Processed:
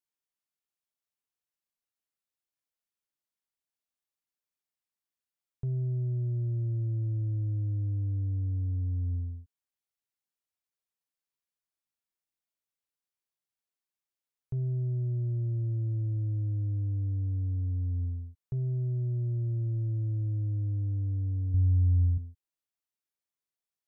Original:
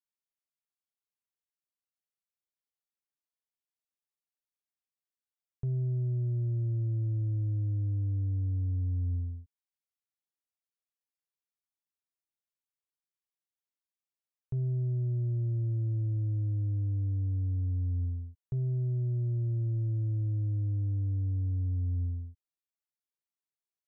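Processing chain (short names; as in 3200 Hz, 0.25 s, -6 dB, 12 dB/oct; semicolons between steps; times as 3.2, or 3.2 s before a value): 21.54–22.18 low shelf 110 Hz +12 dB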